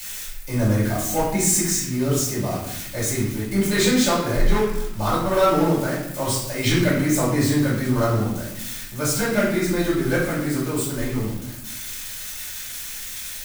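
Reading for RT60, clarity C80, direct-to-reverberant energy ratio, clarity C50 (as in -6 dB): 0.85 s, 5.0 dB, -9.5 dB, 2.0 dB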